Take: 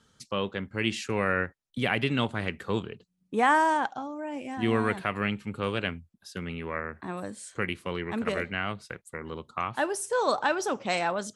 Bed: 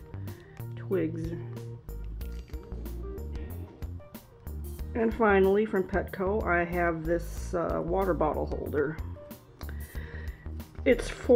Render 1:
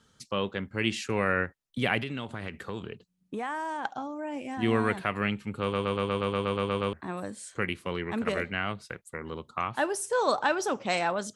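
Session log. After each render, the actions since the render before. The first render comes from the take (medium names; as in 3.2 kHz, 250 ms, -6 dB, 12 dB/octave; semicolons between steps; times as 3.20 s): 2.01–3.85 s: compression 5:1, threshold -31 dBFS; 5.61 s: stutter in place 0.12 s, 11 plays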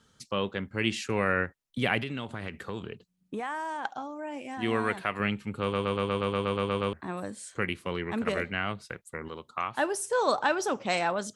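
3.40–5.20 s: bass shelf 290 Hz -7 dB; 9.28–9.77 s: bass shelf 330 Hz -8.5 dB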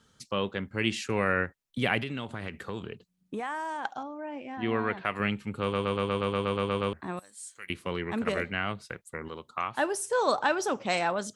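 4.03–5.05 s: distance through air 210 m; 7.19–7.70 s: pre-emphasis filter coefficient 0.97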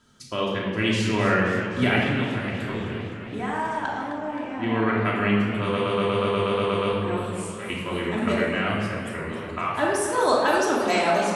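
simulated room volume 1200 m³, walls mixed, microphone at 2.9 m; modulated delay 260 ms, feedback 74%, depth 156 cents, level -12 dB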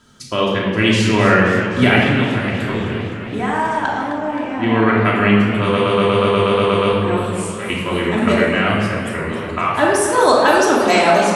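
trim +8.5 dB; peak limiter -1 dBFS, peak gain reduction 2.5 dB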